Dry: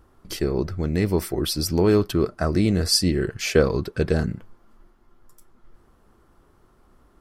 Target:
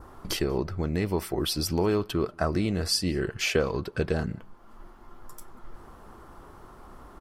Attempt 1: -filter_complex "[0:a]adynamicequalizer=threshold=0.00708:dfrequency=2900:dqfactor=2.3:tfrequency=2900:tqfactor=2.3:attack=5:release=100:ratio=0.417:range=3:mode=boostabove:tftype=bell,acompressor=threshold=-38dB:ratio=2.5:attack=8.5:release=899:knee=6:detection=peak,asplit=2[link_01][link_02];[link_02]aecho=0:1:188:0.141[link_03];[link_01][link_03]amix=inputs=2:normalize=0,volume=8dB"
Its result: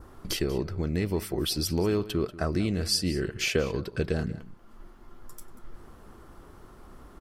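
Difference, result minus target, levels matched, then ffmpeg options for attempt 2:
echo-to-direct +12 dB; 1,000 Hz band −4.5 dB
-filter_complex "[0:a]adynamicequalizer=threshold=0.00708:dfrequency=2900:dqfactor=2.3:tfrequency=2900:tqfactor=2.3:attack=5:release=100:ratio=0.417:range=3:mode=boostabove:tftype=bell,acompressor=threshold=-38dB:ratio=2.5:attack=8.5:release=899:knee=6:detection=peak,equalizer=frequency=920:width_type=o:width=1.3:gain=6.5,asplit=2[link_01][link_02];[link_02]aecho=0:1:188:0.0355[link_03];[link_01][link_03]amix=inputs=2:normalize=0,volume=8dB"

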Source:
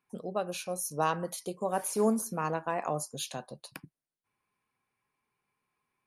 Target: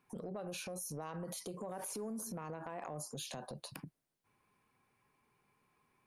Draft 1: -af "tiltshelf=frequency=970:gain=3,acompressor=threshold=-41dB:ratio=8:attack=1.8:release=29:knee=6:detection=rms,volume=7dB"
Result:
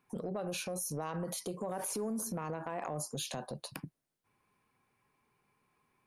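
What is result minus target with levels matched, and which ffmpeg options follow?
downward compressor: peak gain reduction −5.5 dB
-af "tiltshelf=frequency=970:gain=3,acompressor=threshold=-47.5dB:ratio=8:attack=1.8:release=29:knee=6:detection=rms,volume=7dB"

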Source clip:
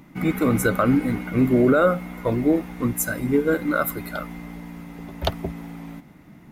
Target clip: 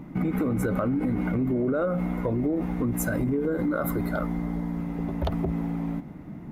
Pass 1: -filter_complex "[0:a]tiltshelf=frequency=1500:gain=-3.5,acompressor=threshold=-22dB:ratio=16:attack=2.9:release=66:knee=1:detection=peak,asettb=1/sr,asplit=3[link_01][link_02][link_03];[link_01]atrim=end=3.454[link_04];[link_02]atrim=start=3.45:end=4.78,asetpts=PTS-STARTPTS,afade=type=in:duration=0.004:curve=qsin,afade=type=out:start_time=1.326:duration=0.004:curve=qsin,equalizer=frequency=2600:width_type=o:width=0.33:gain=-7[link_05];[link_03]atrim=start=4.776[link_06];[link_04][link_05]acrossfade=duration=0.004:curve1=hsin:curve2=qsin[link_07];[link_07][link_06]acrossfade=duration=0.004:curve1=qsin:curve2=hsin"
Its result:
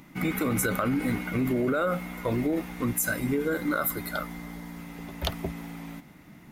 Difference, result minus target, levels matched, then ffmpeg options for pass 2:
2,000 Hz band +6.5 dB
-filter_complex "[0:a]tiltshelf=frequency=1500:gain=8,acompressor=threshold=-22dB:ratio=16:attack=2.9:release=66:knee=1:detection=peak,asettb=1/sr,asplit=3[link_01][link_02][link_03];[link_01]atrim=end=3.454[link_04];[link_02]atrim=start=3.45:end=4.78,asetpts=PTS-STARTPTS,afade=type=in:duration=0.004:curve=qsin,afade=type=out:start_time=1.326:duration=0.004:curve=qsin,equalizer=frequency=2600:width_type=o:width=0.33:gain=-7[link_05];[link_03]atrim=start=4.776[link_06];[link_04][link_05]acrossfade=duration=0.004:curve1=hsin:curve2=qsin[link_07];[link_07][link_06]acrossfade=duration=0.004:curve1=qsin:curve2=hsin"

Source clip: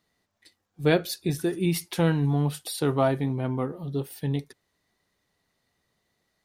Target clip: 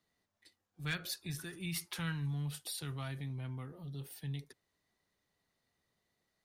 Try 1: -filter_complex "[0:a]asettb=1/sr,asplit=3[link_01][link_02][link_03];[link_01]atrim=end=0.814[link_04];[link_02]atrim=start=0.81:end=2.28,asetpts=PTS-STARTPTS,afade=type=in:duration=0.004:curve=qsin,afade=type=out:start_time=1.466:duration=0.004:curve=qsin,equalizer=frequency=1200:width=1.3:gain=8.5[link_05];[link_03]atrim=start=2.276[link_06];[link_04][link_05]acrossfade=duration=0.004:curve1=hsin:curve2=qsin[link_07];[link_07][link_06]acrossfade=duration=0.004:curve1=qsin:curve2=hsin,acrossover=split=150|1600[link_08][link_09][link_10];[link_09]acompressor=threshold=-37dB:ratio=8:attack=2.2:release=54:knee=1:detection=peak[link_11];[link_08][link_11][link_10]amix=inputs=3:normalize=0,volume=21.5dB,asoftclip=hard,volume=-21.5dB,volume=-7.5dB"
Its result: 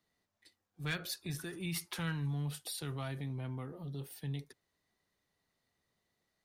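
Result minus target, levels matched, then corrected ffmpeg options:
downward compressor: peak gain reduction −6 dB
-filter_complex "[0:a]asettb=1/sr,asplit=3[link_01][link_02][link_03];[link_01]atrim=end=0.814[link_04];[link_02]atrim=start=0.81:end=2.28,asetpts=PTS-STARTPTS,afade=type=in:duration=0.004:curve=qsin,afade=type=out:start_time=1.466:duration=0.004:curve=qsin,equalizer=frequency=1200:width=1.3:gain=8.5[link_05];[link_03]atrim=start=2.276[link_06];[link_04][link_05]acrossfade=duration=0.004:curve1=hsin:curve2=qsin[link_07];[link_07][link_06]acrossfade=duration=0.004:curve1=qsin:curve2=hsin,acrossover=split=150|1600[link_08][link_09][link_10];[link_09]acompressor=threshold=-44dB:ratio=8:attack=2.2:release=54:knee=1:detection=peak[link_11];[link_08][link_11][link_10]amix=inputs=3:normalize=0,volume=21.5dB,asoftclip=hard,volume=-21.5dB,volume=-7.5dB"

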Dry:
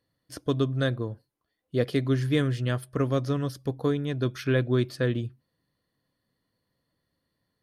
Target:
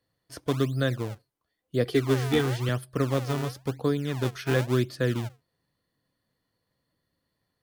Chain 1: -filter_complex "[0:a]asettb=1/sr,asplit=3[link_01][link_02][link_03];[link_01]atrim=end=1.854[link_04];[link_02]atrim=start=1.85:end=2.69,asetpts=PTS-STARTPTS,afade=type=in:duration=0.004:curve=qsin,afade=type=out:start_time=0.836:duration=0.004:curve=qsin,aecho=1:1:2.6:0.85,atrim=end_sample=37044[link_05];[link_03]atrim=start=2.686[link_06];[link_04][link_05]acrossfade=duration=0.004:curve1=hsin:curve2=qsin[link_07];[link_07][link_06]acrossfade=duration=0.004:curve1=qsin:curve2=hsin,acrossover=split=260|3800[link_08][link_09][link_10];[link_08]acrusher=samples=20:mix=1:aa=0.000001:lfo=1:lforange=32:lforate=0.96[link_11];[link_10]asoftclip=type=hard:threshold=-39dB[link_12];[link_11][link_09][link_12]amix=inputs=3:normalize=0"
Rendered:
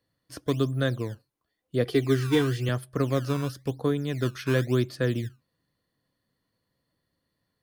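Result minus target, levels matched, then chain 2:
sample-and-hold swept by an LFO: distortion −8 dB
-filter_complex "[0:a]asettb=1/sr,asplit=3[link_01][link_02][link_03];[link_01]atrim=end=1.854[link_04];[link_02]atrim=start=1.85:end=2.69,asetpts=PTS-STARTPTS,afade=type=in:duration=0.004:curve=qsin,afade=type=out:start_time=0.836:duration=0.004:curve=qsin,aecho=1:1:2.6:0.85,atrim=end_sample=37044[link_05];[link_03]atrim=start=2.686[link_06];[link_04][link_05]acrossfade=duration=0.004:curve1=hsin:curve2=qsin[link_07];[link_07][link_06]acrossfade=duration=0.004:curve1=qsin:curve2=hsin,acrossover=split=260|3800[link_08][link_09][link_10];[link_08]acrusher=samples=46:mix=1:aa=0.000001:lfo=1:lforange=73.6:lforate=0.96[link_11];[link_10]asoftclip=type=hard:threshold=-39dB[link_12];[link_11][link_09][link_12]amix=inputs=3:normalize=0"

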